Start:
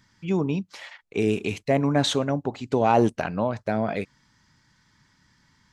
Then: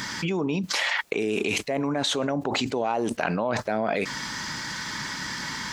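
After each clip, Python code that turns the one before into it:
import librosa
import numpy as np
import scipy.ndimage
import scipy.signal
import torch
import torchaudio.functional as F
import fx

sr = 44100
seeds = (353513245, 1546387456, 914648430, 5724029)

y = scipy.signal.sosfilt(scipy.signal.butter(2, 61.0, 'highpass', fs=sr, output='sos'), x)
y = fx.peak_eq(y, sr, hz=91.0, db=-14.5, octaves=2.0)
y = fx.env_flatten(y, sr, amount_pct=100)
y = y * librosa.db_to_amplitude(-8.0)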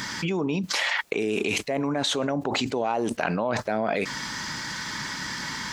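y = x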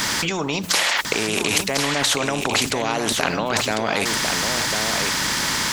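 y = fx.hum_notches(x, sr, base_hz=60, count=3)
y = y + 10.0 ** (-9.0 / 20.0) * np.pad(y, (int(1049 * sr / 1000.0), 0))[:len(y)]
y = fx.spectral_comp(y, sr, ratio=2.0)
y = y * librosa.db_to_amplitude(7.0)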